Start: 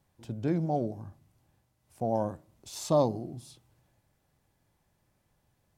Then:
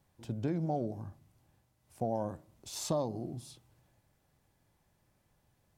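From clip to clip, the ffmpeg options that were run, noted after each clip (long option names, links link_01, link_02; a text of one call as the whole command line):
ffmpeg -i in.wav -af "acompressor=threshold=-29dB:ratio=6" out.wav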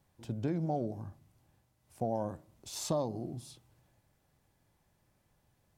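ffmpeg -i in.wav -af anull out.wav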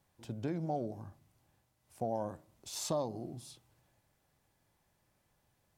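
ffmpeg -i in.wav -af "lowshelf=frequency=380:gain=-5" out.wav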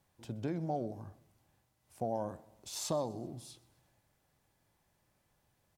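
ffmpeg -i in.wav -af "aecho=1:1:127|254|381:0.075|0.0382|0.0195" out.wav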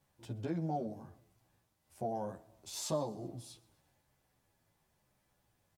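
ffmpeg -i in.wav -filter_complex "[0:a]asplit=2[link_01][link_02];[link_02]adelay=11,afreqshift=-1[link_03];[link_01][link_03]amix=inputs=2:normalize=1,volume=2dB" out.wav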